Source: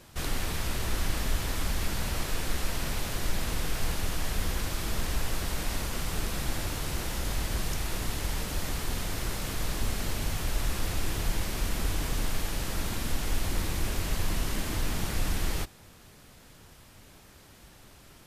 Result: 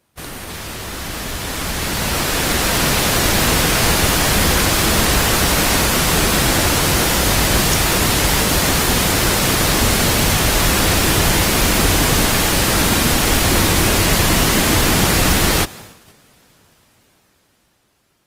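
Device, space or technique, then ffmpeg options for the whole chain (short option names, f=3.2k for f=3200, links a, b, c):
video call: -af "highpass=f=140:p=1,dynaudnorm=f=470:g=9:m=15dB,agate=range=-14dB:threshold=-39dB:ratio=16:detection=peak,volume=5.5dB" -ar 48000 -c:a libopus -b:a 32k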